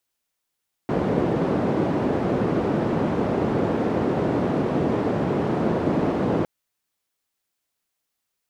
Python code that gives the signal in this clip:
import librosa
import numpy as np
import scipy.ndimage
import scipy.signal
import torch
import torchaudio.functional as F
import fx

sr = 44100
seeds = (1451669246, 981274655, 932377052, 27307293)

y = fx.band_noise(sr, seeds[0], length_s=5.56, low_hz=140.0, high_hz=400.0, level_db=-22.5)